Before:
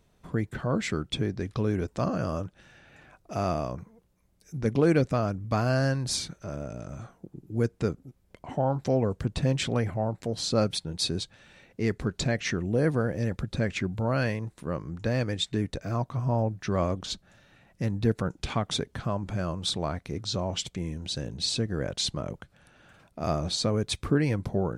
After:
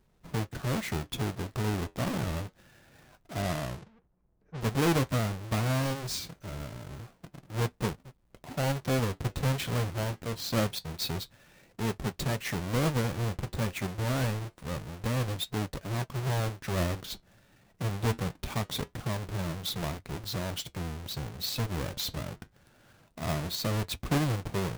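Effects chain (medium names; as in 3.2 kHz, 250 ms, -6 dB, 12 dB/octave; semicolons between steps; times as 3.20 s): square wave that keeps the level; 3.42–4.61 s: level-controlled noise filter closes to 1 kHz, open at -25 dBFS; flange 0.25 Hz, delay 5.2 ms, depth 6 ms, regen -67%; trim -3.5 dB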